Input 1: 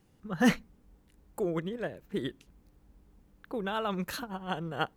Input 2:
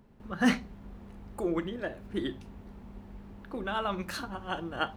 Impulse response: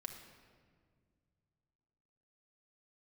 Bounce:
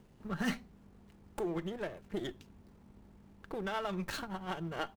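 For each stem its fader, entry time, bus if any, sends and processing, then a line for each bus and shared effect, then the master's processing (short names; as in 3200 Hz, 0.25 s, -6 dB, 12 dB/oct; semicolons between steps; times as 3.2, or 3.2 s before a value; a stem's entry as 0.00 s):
+2.0 dB, 0.00 s, no send, half-wave gain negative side -12 dB; compressor, threshold -35 dBFS, peak gain reduction 13.5 dB
-2.5 dB, 0.7 ms, no send, high shelf 8000 Hz +12 dB; auto duck -10 dB, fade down 0.65 s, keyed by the first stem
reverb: off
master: running maximum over 3 samples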